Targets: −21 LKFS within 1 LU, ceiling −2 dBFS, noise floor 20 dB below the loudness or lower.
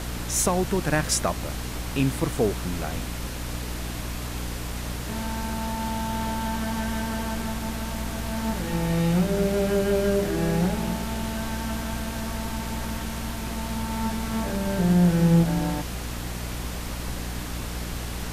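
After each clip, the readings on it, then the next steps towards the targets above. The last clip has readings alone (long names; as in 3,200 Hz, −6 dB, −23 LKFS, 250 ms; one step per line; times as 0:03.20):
mains hum 60 Hz; hum harmonics up to 300 Hz; level of the hum −31 dBFS; background noise floor −33 dBFS; target noise floor −47 dBFS; integrated loudness −27.0 LKFS; sample peak −10.0 dBFS; target loudness −21.0 LKFS
→ mains-hum notches 60/120/180/240/300 Hz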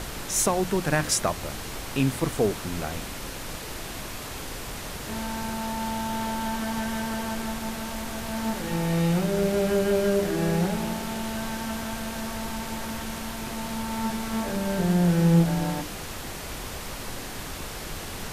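mains hum none found; background noise floor −36 dBFS; target noise floor −48 dBFS
→ noise reduction from a noise print 12 dB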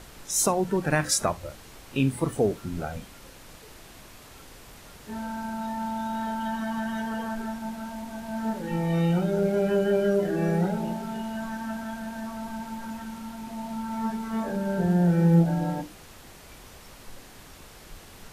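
background noise floor −48 dBFS; integrated loudness −27.5 LKFS; sample peak −11.0 dBFS; target loudness −21.0 LKFS
→ level +6.5 dB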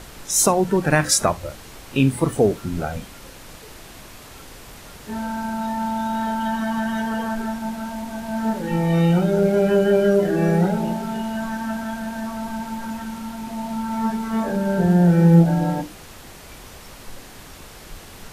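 integrated loudness −21.0 LKFS; sample peak −4.5 dBFS; background noise floor −42 dBFS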